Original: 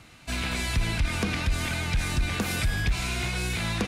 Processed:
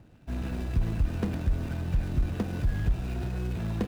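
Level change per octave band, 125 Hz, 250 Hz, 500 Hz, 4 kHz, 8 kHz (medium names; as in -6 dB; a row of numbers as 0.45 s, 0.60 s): 0.0 dB, -0.5 dB, -2.5 dB, -18.5 dB, -19.5 dB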